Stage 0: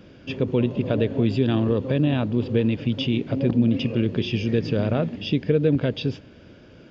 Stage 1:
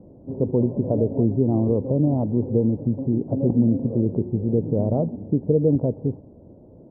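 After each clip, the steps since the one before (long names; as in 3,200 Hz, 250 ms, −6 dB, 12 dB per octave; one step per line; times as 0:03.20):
Butterworth low-pass 890 Hz 48 dB per octave
level +1 dB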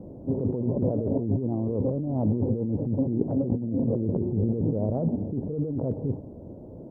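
compressor whose output falls as the input rises −26 dBFS, ratio −1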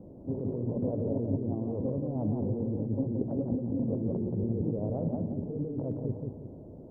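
feedback echo with a swinging delay time 176 ms, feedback 38%, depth 78 cents, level −4 dB
level −6.5 dB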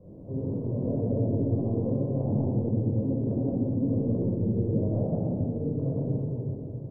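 rectangular room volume 3,000 cubic metres, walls mixed, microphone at 5.5 metres
level −6.5 dB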